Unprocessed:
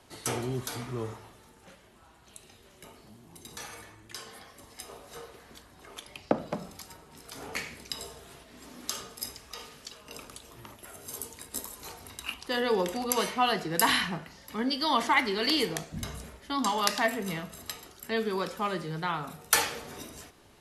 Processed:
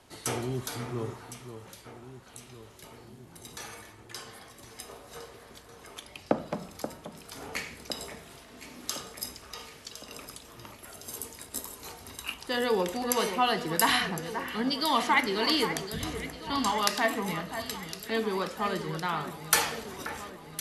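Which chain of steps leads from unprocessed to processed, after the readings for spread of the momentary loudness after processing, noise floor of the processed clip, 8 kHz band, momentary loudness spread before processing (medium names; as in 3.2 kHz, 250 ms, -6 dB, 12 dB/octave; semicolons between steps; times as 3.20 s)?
22 LU, -52 dBFS, +0.5 dB, 21 LU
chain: echo whose repeats swap between lows and highs 530 ms, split 2.1 kHz, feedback 74%, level -9.5 dB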